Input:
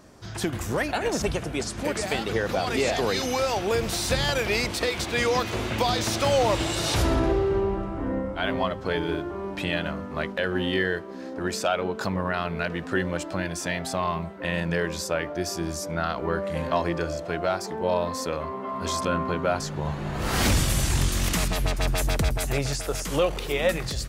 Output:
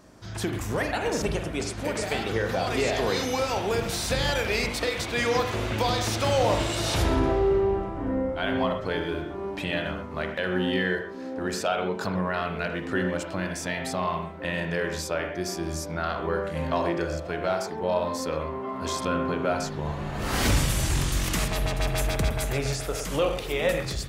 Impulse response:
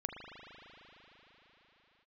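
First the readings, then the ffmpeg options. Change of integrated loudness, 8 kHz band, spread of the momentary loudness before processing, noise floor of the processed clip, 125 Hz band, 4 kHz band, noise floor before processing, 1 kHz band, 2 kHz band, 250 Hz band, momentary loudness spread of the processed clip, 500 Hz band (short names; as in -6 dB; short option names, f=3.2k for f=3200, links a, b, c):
-1.0 dB, -2.0 dB, 7 LU, -36 dBFS, -1.0 dB, -1.5 dB, -36 dBFS, -1.0 dB, -1.0 dB, -0.5 dB, 7 LU, -0.5 dB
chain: -filter_complex "[1:a]atrim=start_sample=2205,afade=t=out:st=0.19:d=0.01,atrim=end_sample=8820[a];[0:a][a]afir=irnorm=-1:irlink=0"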